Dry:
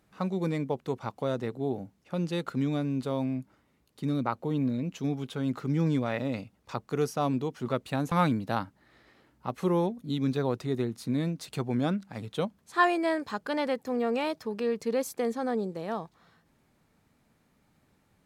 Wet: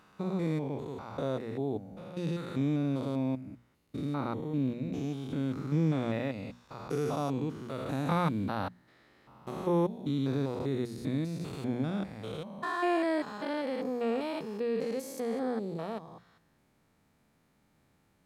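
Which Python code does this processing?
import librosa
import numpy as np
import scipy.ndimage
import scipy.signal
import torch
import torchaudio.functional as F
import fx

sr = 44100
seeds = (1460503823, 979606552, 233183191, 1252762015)

y = fx.spec_steps(x, sr, hold_ms=200)
y = fx.hum_notches(y, sr, base_hz=60, count=4)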